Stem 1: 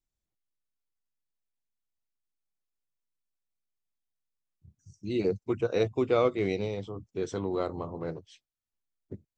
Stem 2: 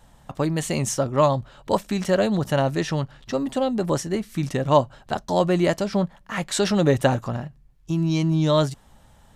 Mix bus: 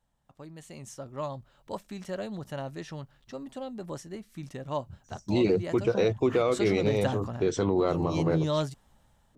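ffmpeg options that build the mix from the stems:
ffmpeg -i stem1.wav -i stem2.wav -filter_complex "[0:a]adelay=250,volume=0.5dB[link_01];[1:a]volume=-17dB,afade=type=in:start_time=5.72:duration=0.34:silence=0.473151[link_02];[link_01][link_02]amix=inputs=2:normalize=0,dynaudnorm=framelen=390:gausssize=5:maxgain=8.5dB,alimiter=limit=-15.5dB:level=0:latency=1:release=103" out.wav

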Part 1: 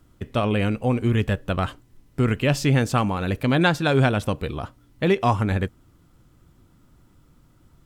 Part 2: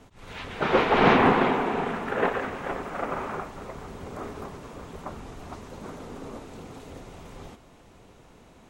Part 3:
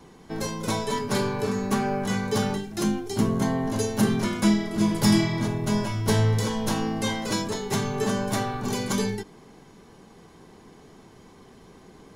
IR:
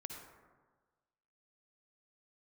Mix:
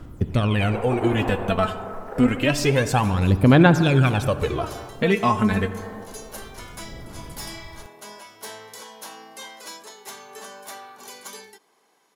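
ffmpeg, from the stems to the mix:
-filter_complex "[0:a]aphaser=in_gain=1:out_gain=1:delay=4.7:decay=0.71:speed=0.28:type=sinusoidal,volume=2.5dB,asplit=2[link_01][link_02];[link_02]volume=-3dB[link_03];[1:a]bandpass=frequency=600:width_type=q:width=1.5:csg=0,volume=-2dB[link_04];[2:a]highpass=630,equalizer=frequency=13000:width_type=o:width=0.74:gain=8,volume=21.5dB,asoftclip=hard,volume=-21.5dB,adelay=2350,volume=-8.5dB[link_05];[3:a]atrim=start_sample=2205[link_06];[link_03][link_06]afir=irnorm=-1:irlink=0[link_07];[link_01][link_04][link_05][link_07]amix=inputs=4:normalize=0,acompressor=threshold=-27dB:ratio=1.5"

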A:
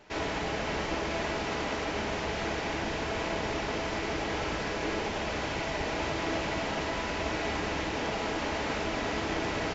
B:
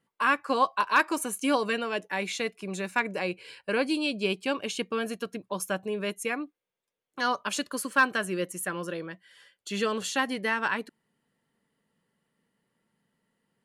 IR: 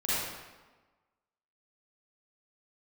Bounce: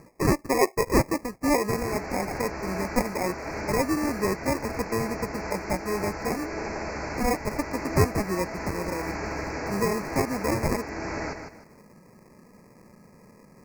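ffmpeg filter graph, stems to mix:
-filter_complex "[0:a]adelay=1600,volume=-0.5dB,asplit=2[link_01][link_02];[link_02]volume=-7dB[link_03];[1:a]lowpass=3500,acompressor=mode=upward:threshold=-36dB:ratio=2.5,acrusher=samples=30:mix=1:aa=0.000001,volume=2.5dB,asplit=2[link_04][link_05];[link_05]apad=whole_len=500198[link_06];[link_01][link_06]sidechaincompress=threshold=-29dB:ratio=8:attack=8.9:release=420[link_07];[link_03]aecho=0:1:154|308|462|616:1|0.28|0.0784|0.022[link_08];[link_07][link_04][link_08]amix=inputs=3:normalize=0,asuperstop=centerf=3300:order=8:qfactor=1.7"

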